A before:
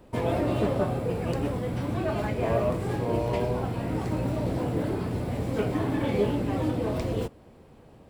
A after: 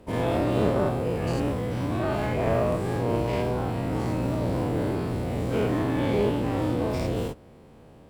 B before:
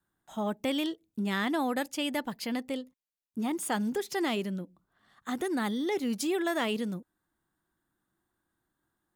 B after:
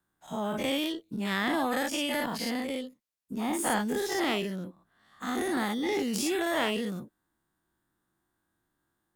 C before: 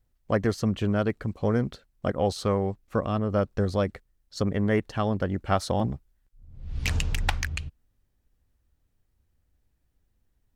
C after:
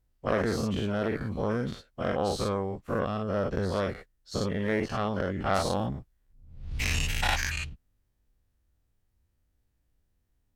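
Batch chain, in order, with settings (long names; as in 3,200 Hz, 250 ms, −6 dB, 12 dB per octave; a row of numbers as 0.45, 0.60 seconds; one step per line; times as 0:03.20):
every bin's largest magnitude spread in time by 120 ms
harmonic generator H 2 −8 dB, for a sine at −4.5 dBFS
normalise the peak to −9 dBFS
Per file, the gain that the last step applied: −3.0, −3.0, −7.0 decibels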